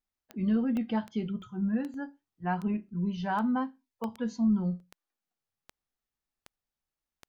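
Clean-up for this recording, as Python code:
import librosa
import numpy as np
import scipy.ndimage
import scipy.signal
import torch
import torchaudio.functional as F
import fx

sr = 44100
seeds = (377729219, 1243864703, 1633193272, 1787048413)

y = fx.fix_declick_ar(x, sr, threshold=10.0)
y = fx.fix_interpolate(y, sr, at_s=(0.77, 1.42, 1.94, 2.89, 4.04, 4.8, 5.32), length_ms=1.3)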